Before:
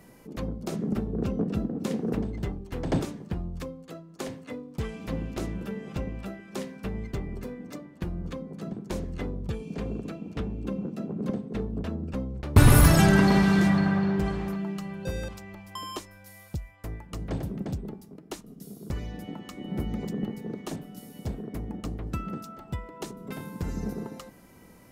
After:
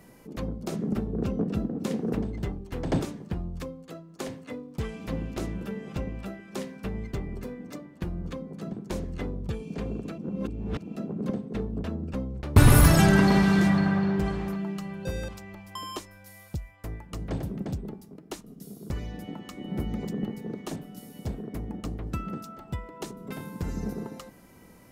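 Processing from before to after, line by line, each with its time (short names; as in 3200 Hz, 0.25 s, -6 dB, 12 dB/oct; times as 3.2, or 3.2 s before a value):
10.18–10.96 reverse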